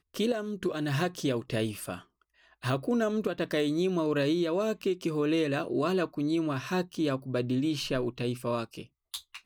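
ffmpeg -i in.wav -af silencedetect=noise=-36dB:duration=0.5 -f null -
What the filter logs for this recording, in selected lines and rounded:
silence_start: 1.97
silence_end: 2.63 | silence_duration: 0.66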